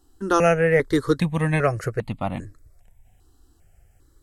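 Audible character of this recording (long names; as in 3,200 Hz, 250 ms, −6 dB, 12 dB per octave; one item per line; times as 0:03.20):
notches that jump at a steady rate 2.5 Hz 610–1,600 Hz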